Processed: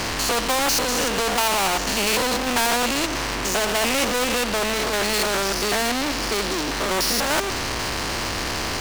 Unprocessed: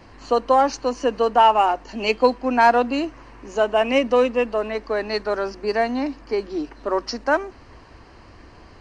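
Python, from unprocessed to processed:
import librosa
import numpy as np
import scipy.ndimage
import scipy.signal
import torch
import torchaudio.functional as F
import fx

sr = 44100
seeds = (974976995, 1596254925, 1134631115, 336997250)

y = fx.spec_steps(x, sr, hold_ms=100)
y = fx.high_shelf(y, sr, hz=5600.0, db=8.5)
y = fx.power_curve(y, sr, exponent=0.5)
y = fx.spectral_comp(y, sr, ratio=2.0)
y = y * librosa.db_to_amplitude(-4.5)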